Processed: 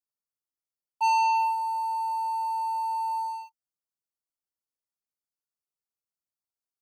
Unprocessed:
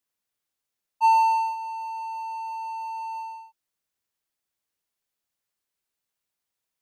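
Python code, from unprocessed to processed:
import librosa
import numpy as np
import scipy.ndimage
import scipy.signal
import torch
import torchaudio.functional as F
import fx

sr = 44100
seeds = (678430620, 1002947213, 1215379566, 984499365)

y = scipy.signal.sosfilt(scipy.signal.ellip(3, 1.0, 40, [1400.0, 4500.0], 'bandstop', fs=sr, output='sos'), x)
y = fx.leveller(y, sr, passes=3)
y = y * librosa.db_to_amplitude(-6.0)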